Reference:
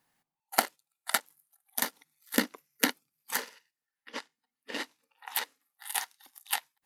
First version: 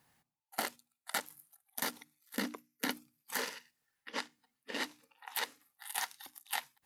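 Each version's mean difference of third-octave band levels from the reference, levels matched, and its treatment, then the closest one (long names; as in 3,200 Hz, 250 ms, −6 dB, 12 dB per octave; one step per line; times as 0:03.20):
6.0 dB: parametric band 100 Hz +8.5 dB 1.6 octaves
reversed playback
downward compressor 5 to 1, threshold −44 dBFS, peak gain reduction 23.5 dB
reversed playback
mains-hum notches 60/120/180/240/300 Hz
automatic gain control gain up to 5 dB
level +3.5 dB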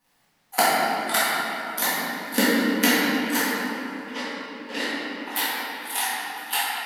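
11.0 dB: surface crackle 280 per second −58 dBFS
rectangular room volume 180 cubic metres, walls hard, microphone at 1.9 metres
feedback echo with a swinging delay time 106 ms, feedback 77%, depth 137 cents, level −22 dB
level −1 dB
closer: first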